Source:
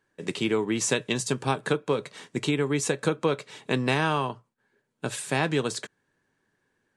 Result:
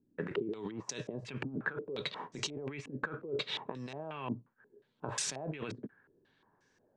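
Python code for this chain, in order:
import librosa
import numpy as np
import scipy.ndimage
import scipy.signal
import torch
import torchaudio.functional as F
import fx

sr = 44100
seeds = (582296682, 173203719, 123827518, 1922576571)

y = fx.over_compress(x, sr, threshold_db=-35.0, ratio=-1.0)
y = fx.filter_held_lowpass(y, sr, hz=5.6, low_hz=260.0, high_hz=5800.0)
y = y * 10.0 ** (-6.5 / 20.0)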